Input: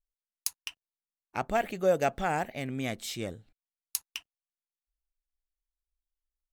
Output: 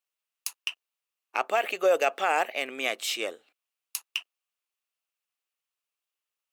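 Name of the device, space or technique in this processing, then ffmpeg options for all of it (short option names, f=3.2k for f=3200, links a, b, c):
laptop speaker: -af "highpass=f=390:w=0.5412,highpass=f=390:w=1.3066,equalizer=f=1.2k:t=o:w=0.32:g=6,equalizer=f=2.7k:t=o:w=0.45:g=9,alimiter=limit=-19dB:level=0:latency=1:release=38,volume=5.5dB"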